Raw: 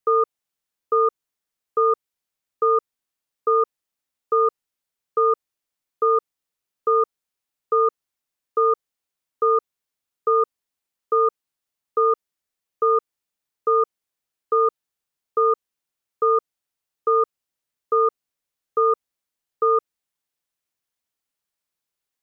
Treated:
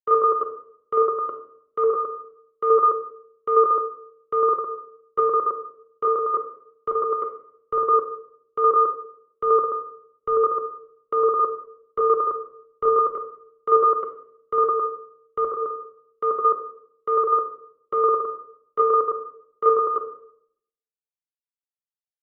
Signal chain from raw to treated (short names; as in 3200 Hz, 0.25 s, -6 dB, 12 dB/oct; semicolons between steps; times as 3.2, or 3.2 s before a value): reverse delay 0.108 s, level -2.5 dB; gate -29 dBFS, range -21 dB; bell 890 Hz +10 dB 0.81 oct; shoebox room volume 810 m³, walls mixed, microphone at 1.1 m; three-band expander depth 100%; gain -4 dB